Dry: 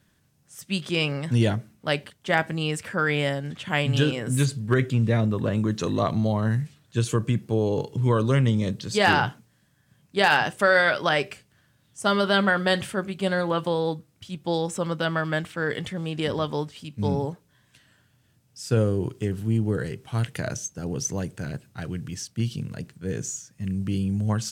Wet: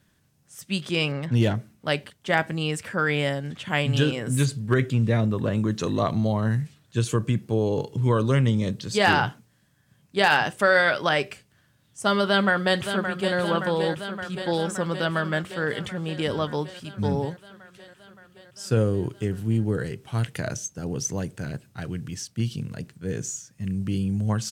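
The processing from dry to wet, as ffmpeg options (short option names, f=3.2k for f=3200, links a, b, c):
-filter_complex "[0:a]asettb=1/sr,asplit=3[a][b][c];[a]atrim=end=1.124[d];[b]atrim=start=1.12:end=1.55,asetpts=PTS-STARTPTS,afade=t=in:d=0.004:c=qsin,afade=t=out:st=0.426:d=0.004:c=qsin,adynamicsmooth=sensitivity=7:basefreq=3k[e];[c]atrim=start=1.546[f];[d][e]acrossfade=d=0.004:c1=hsin:c2=qsin[g];[g][f]acrossfade=d=0.004:c1=qsin:c2=hsin,asplit=2[h][i];[i]afade=t=in:st=12.25:d=0.01,afade=t=out:st=13.37:d=0.01,aecho=0:1:570|1140|1710|2280|2850|3420|3990|4560|5130|5700|6270|6840:0.398107|0.29858|0.223935|0.167951|0.125964|0.0944727|0.0708545|0.0531409|0.0398557|0.0298918|0.0224188|0.0168141[j];[h][j]amix=inputs=2:normalize=0"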